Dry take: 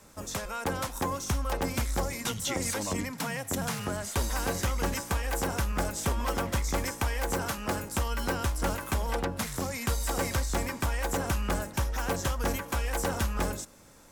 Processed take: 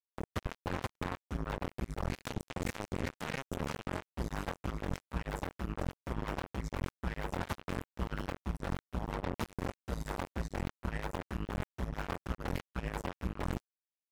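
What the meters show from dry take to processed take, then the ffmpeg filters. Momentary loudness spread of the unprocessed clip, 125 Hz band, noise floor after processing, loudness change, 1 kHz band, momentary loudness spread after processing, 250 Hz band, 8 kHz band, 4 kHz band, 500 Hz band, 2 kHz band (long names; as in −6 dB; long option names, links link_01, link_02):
3 LU, −6.5 dB, below −85 dBFS, −8.5 dB, −8.5 dB, 2 LU, −5.5 dB, −20.0 dB, −12.0 dB, −8.0 dB, −9.0 dB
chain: -af "bass=frequency=250:gain=12,treble=frequency=4000:gain=-14,areverse,acompressor=threshold=-28dB:ratio=16,areverse,acrusher=bits=3:mix=0:aa=0.5,asoftclip=type=hard:threshold=-30.5dB,volume=6.5dB"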